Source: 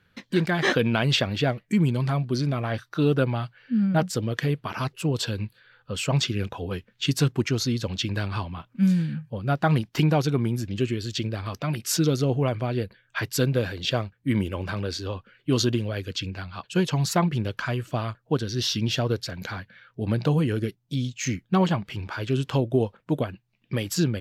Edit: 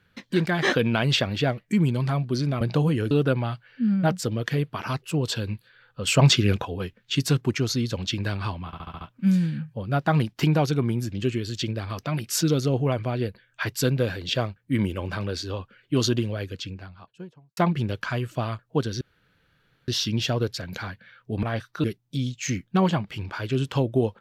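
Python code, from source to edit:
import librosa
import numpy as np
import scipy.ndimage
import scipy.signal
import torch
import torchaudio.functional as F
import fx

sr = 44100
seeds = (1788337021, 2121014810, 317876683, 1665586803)

y = fx.studio_fade_out(x, sr, start_s=15.74, length_s=1.39)
y = fx.edit(y, sr, fx.swap(start_s=2.61, length_s=0.41, other_s=20.12, other_length_s=0.5),
    fx.clip_gain(start_s=5.98, length_s=0.58, db=6.5),
    fx.stutter(start_s=8.57, slice_s=0.07, count=6),
    fx.insert_room_tone(at_s=18.57, length_s=0.87), tone=tone)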